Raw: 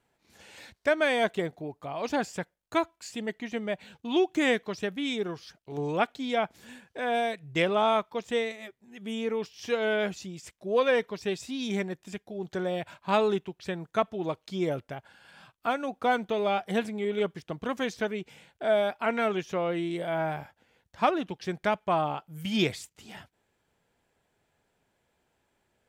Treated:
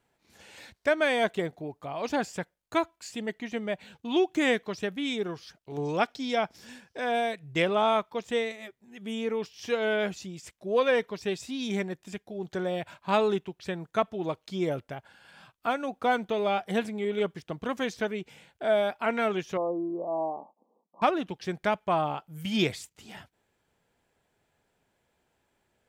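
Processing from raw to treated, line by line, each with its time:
0:05.85–0:07.12: parametric band 5,300 Hz +12 dB 0.37 octaves
0:19.57–0:21.02: linear-phase brick-wall band-pass 180–1,200 Hz

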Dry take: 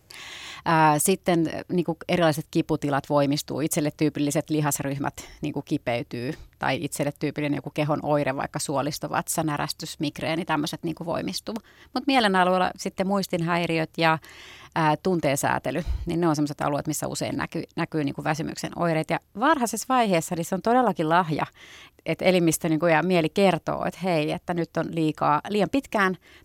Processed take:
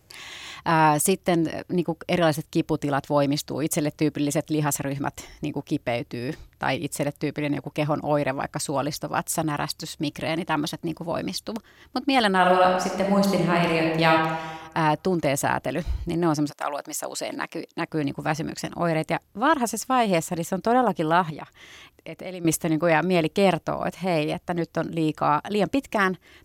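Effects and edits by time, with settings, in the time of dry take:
0:12.37–0:14.13: thrown reverb, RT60 1.3 s, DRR 0 dB
0:16.49–0:17.87: high-pass filter 790 Hz → 210 Hz
0:21.30–0:22.45: downward compressor 3 to 1, threshold −36 dBFS

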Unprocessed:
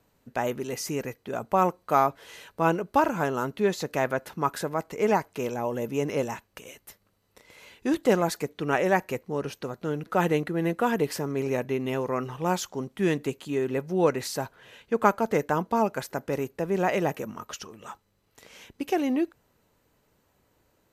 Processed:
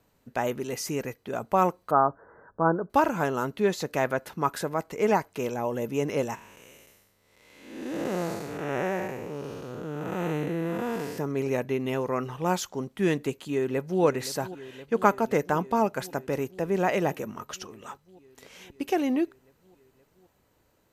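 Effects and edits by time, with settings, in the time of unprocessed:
0:01.91–0:02.90: Butterworth low-pass 1,600 Hz 72 dB per octave
0:06.35–0:11.18: spectrum smeared in time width 308 ms
0:13.38–0:14.02: delay throw 520 ms, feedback 80%, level −14.5 dB

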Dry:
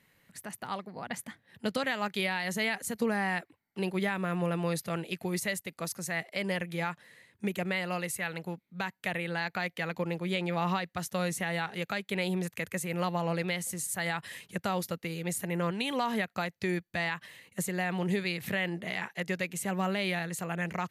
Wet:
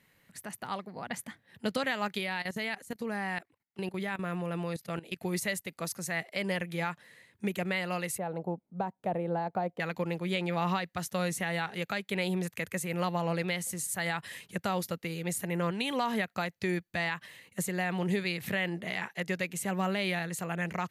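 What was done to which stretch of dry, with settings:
0:02.18–0:05.22: output level in coarse steps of 17 dB
0:08.18–0:09.80: drawn EQ curve 100 Hz 0 dB, 780 Hz +7 dB, 1,900 Hz −18 dB

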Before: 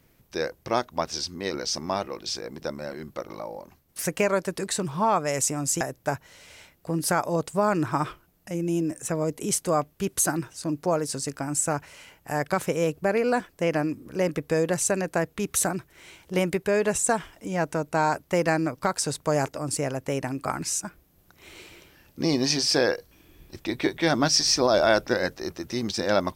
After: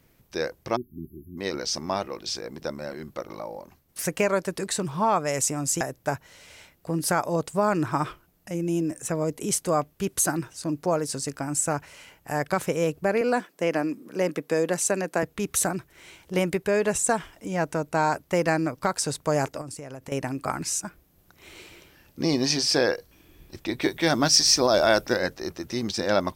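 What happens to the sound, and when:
0:00.76–0:01.37: time-frequency box erased 400–11,000 Hz
0:13.21–0:15.23: high-pass filter 180 Hz 24 dB per octave
0:19.61–0:20.12: downward compressor 16 to 1, threshold −34 dBFS
0:23.81–0:25.17: high-shelf EQ 7,100 Hz +8.5 dB

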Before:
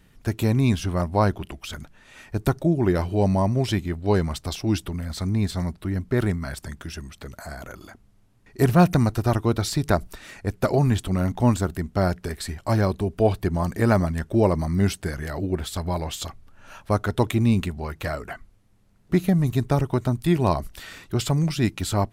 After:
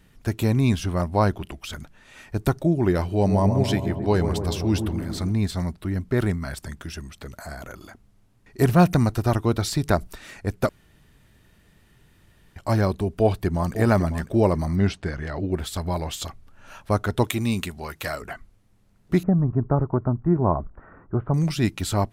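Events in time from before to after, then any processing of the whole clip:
0:03.09–0:05.32: delay with a low-pass on its return 135 ms, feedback 70%, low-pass 900 Hz, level −6.5 dB
0:10.69–0:12.56: fill with room tone
0:13.12–0:13.75: delay throw 550 ms, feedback 25%, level −11.5 dB
0:14.76–0:15.52: low-pass filter 4,400 Hz
0:17.24–0:18.22: spectral tilt +2 dB per octave
0:19.23–0:21.34: Butterworth low-pass 1,400 Hz

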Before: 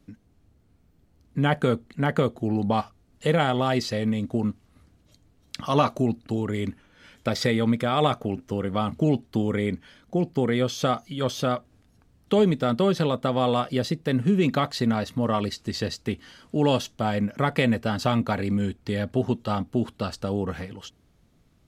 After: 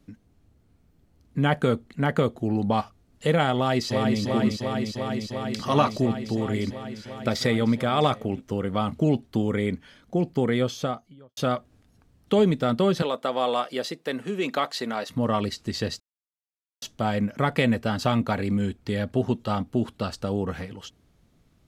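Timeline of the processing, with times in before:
0:03.55–0:04.21: delay throw 350 ms, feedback 85%, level −4 dB
0:10.54–0:11.37: fade out and dull
0:13.02–0:15.10: high-pass filter 390 Hz
0:16.00–0:16.82: silence

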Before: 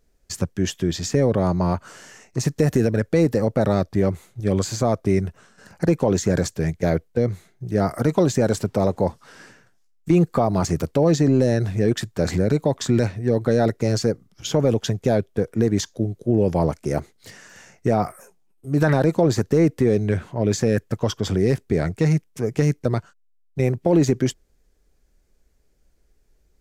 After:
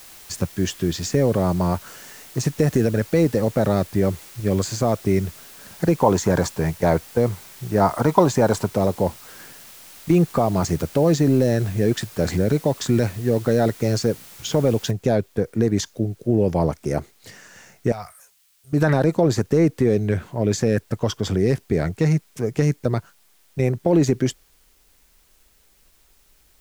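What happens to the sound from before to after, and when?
0:06.00–0:08.70: parametric band 950 Hz +13.5 dB 0.73 octaves
0:14.91: noise floor change −44 dB −60 dB
0:17.92–0:18.73: guitar amp tone stack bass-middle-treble 10-0-10

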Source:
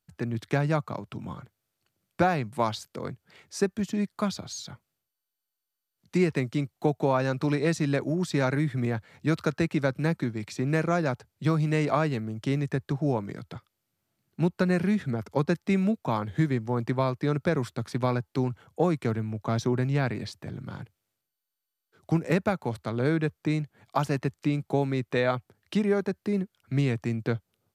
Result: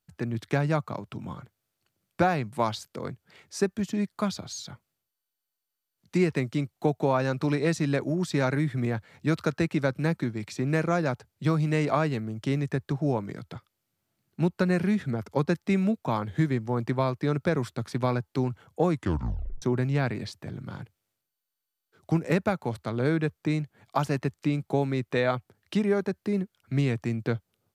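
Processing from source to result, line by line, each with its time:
0:18.93: tape stop 0.69 s

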